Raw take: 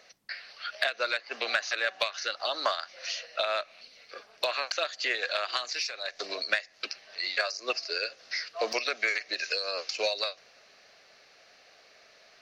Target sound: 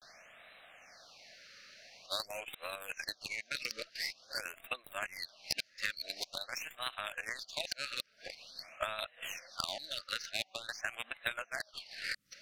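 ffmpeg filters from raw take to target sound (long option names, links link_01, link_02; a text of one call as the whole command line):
ffmpeg -i in.wav -filter_complex "[0:a]areverse,equalizer=frequency=410:width=2.2:gain=-13.5,acrossover=split=3000[link_01][link_02];[link_01]alimiter=limit=-19.5dB:level=0:latency=1:release=395[link_03];[link_03][link_02]amix=inputs=2:normalize=0,acompressor=threshold=-42dB:ratio=20,aeval=exprs='0.0473*(cos(1*acos(clip(val(0)/0.0473,-1,1)))-cos(1*PI/2))+0.0188*(cos(2*acos(clip(val(0)/0.0473,-1,1)))-cos(2*PI/2))+0.00237*(cos(5*acos(clip(val(0)/0.0473,-1,1)))-cos(5*PI/2))+0.00596*(cos(7*acos(clip(val(0)/0.0473,-1,1)))-cos(7*PI/2))+0.00188*(cos(8*acos(clip(val(0)/0.0473,-1,1)))-cos(8*PI/2))':channel_layout=same,afftfilt=real='re*(1-between(b*sr/1024,820*pow(5800/820,0.5+0.5*sin(2*PI*0.47*pts/sr))/1.41,820*pow(5800/820,0.5+0.5*sin(2*PI*0.47*pts/sr))*1.41))':imag='im*(1-between(b*sr/1024,820*pow(5800/820,0.5+0.5*sin(2*PI*0.47*pts/sr))/1.41,820*pow(5800/820,0.5+0.5*sin(2*PI*0.47*pts/sr))*1.41))':win_size=1024:overlap=0.75,volume=11dB" out.wav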